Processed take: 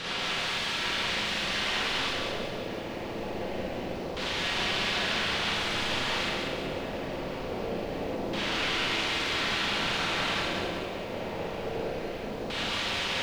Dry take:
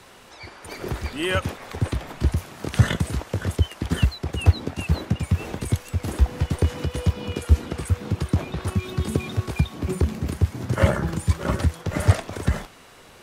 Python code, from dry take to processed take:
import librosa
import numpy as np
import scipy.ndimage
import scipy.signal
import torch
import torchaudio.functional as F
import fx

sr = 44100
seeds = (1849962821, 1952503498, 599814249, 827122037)

p1 = fx.spec_steps(x, sr, hold_ms=200)
p2 = scipy.signal.sosfilt(scipy.signal.butter(2, 52.0, 'highpass', fs=sr, output='sos'), p1)
p3 = fx.low_shelf(p2, sr, hz=99.0, db=-8.0)
p4 = fx.over_compress(p3, sr, threshold_db=-43.0, ratio=-0.5)
p5 = p3 + (p4 * 10.0 ** (-1.5 / 20.0))
p6 = (np.mod(10.0 ** (34.0 / 20.0) * p5 + 1.0, 2.0) - 1.0) / 10.0 ** (34.0 / 20.0)
p7 = fx.filter_lfo_lowpass(p6, sr, shape='square', hz=0.24, low_hz=550.0, high_hz=3400.0, q=1.6)
p8 = p7 + fx.echo_stepped(p7, sr, ms=618, hz=300.0, octaves=1.4, feedback_pct=70, wet_db=-7, dry=0)
p9 = fx.rev_schroeder(p8, sr, rt60_s=0.54, comb_ms=33, drr_db=-3.0)
p10 = fx.echo_crushed(p9, sr, ms=187, feedback_pct=55, bits=10, wet_db=-3.5)
y = p10 * 10.0 ** (3.0 / 20.0)